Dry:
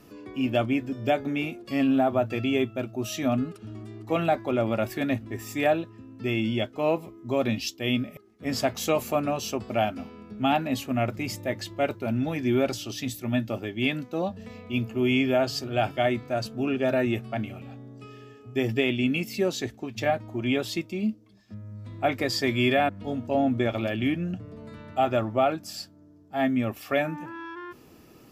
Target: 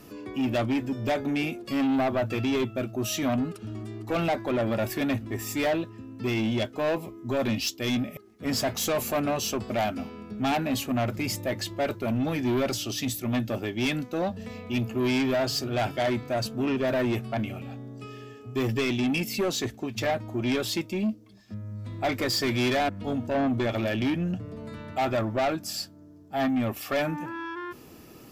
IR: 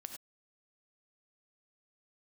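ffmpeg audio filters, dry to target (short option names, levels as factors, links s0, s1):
-af "highshelf=f=6300:g=4,asoftclip=type=tanh:threshold=0.0562,volume=1.5"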